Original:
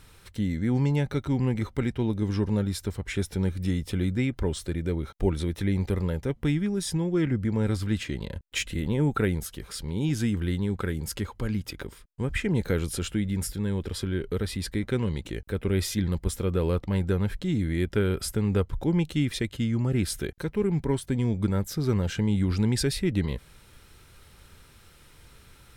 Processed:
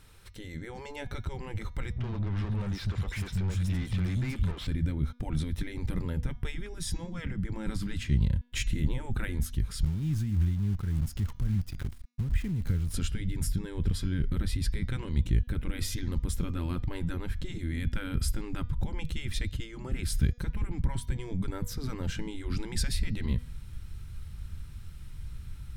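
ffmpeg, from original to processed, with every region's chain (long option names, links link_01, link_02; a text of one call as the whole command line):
ffmpeg -i in.wav -filter_complex "[0:a]asettb=1/sr,asplit=3[link_01][link_02][link_03];[link_01]atrim=end=1.924[link_04];[link_02]atrim=start=1.92:end=4.67,asetpts=PTS-STARTPTS,afade=type=in:duration=0.004:curve=qsin,afade=type=out:start_time=2.746:duration=0.004:curve=qsin,acrossover=split=230|4100[link_05][link_06][link_07];[link_06]adelay=50[link_08];[link_07]adelay=420[link_09];[link_05][link_08][link_09]amix=inputs=3:normalize=0,atrim=end_sample=121275,acompressor=threshold=-39dB:ratio=2.5:attack=3.2:release=140:knee=1:detection=peak,asplit=2[link_10][link_11];[link_11]highpass=frequency=720:poles=1,volume=27dB,asoftclip=type=tanh:threshold=-27dB[link_12];[link_10][link_12]amix=inputs=2:normalize=0,lowpass=frequency=3400:poles=1,volume=-6dB[link_13];[link_03]atrim=start=4.666[link_14];[link_04][link_13]acrossfade=duration=0.004:curve1=hsin:curve2=qsin[link_15];[link_15][link_14]acrossfade=duration=0.004:curve1=qsin:curve2=hsin,asettb=1/sr,asplit=3[link_16][link_17][link_18];[link_16]atrim=end=9.844[link_19];[link_17]atrim=start=9.84:end=12.94,asetpts=PTS-STARTPTS,afade=type=in:duration=0.004:curve=qsin,afade=type=out:start_time=3.096:duration=0.004:curve=qsin,acrusher=bits=7:dc=4:mix=0:aa=0.000001,acompressor=threshold=-36dB:ratio=2.5:attack=3.2:release=140:knee=1:detection=peak,tremolo=f=3.5:d=0.35[link_20];[link_18]atrim=start=12.936[link_21];[link_19][link_20]acrossfade=duration=0.004:curve1=hsin:curve2=qsin[link_22];[link_22][link_21]acrossfade=duration=0.004:curve1=qsin:curve2=hsin,afftfilt=real='re*lt(hypot(re,im),0.224)':imag='im*lt(hypot(re,im),0.224)':win_size=1024:overlap=0.75,bandreject=frequency=242.6:width_type=h:width=4,bandreject=frequency=485.2:width_type=h:width=4,bandreject=frequency=727.8:width_type=h:width=4,bandreject=frequency=970.4:width_type=h:width=4,bandreject=frequency=1213:width_type=h:width=4,bandreject=frequency=1455.6:width_type=h:width=4,bandreject=frequency=1698.2:width_type=h:width=4,bandreject=frequency=1940.8:width_type=h:width=4,bandreject=frequency=2183.4:width_type=h:width=4,bandreject=frequency=2426:width_type=h:width=4,bandreject=frequency=2668.6:width_type=h:width=4,bandreject=frequency=2911.2:width_type=h:width=4,bandreject=frequency=3153.8:width_type=h:width=4,bandreject=frequency=3396.4:width_type=h:width=4,bandreject=frequency=3639:width_type=h:width=4,bandreject=frequency=3881.6:width_type=h:width=4,bandreject=frequency=4124.2:width_type=h:width=4,bandreject=frequency=4366.8:width_type=h:width=4,bandreject=frequency=4609.4:width_type=h:width=4,bandreject=frequency=4852:width_type=h:width=4,bandreject=frequency=5094.6:width_type=h:width=4,bandreject=frequency=5337.2:width_type=h:width=4,bandreject=frequency=5579.8:width_type=h:width=4,bandreject=frequency=5822.4:width_type=h:width=4,bandreject=frequency=6065:width_type=h:width=4,bandreject=frequency=6307.6:width_type=h:width=4,bandreject=frequency=6550.2:width_type=h:width=4,bandreject=frequency=6792.8:width_type=h:width=4,asubboost=boost=10.5:cutoff=140,volume=-4dB" out.wav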